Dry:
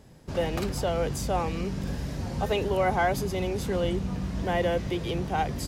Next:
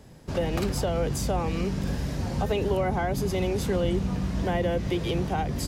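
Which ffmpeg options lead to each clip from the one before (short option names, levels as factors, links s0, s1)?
-filter_complex "[0:a]acrossover=split=390[s0][s1];[s1]acompressor=threshold=0.0282:ratio=6[s2];[s0][s2]amix=inputs=2:normalize=0,volume=1.41"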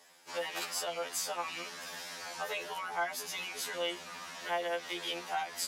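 -filter_complex "[0:a]highpass=1100,asplit=2[s0][s1];[s1]asoftclip=type=tanh:threshold=0.0299,volume=0.422[s2];[s0][s2]amix=inputs=2:normalize=0,afftfilt=real='re*2*eq(mod(b,4),0)':imag='im*2*eq(mod(b,4),0)':win_size=2048:overlap=0.75"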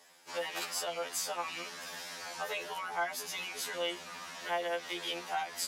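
-af anull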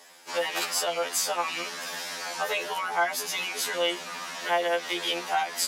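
-af "highpass=170,volume=2.66"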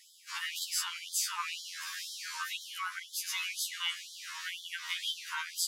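-af "afftfilt=real='re*gte(b*sr/1024,860*pow(3100/860,0.5+0.5*sin(2*PI*2*pts/sr)))':imag='im*gte(b*sr/1024,860*pow(3100/860,0.5+0.5*sin(2*PI*2*pts/sr)))':win_size=1024:overlap=0.75,volume=0.596"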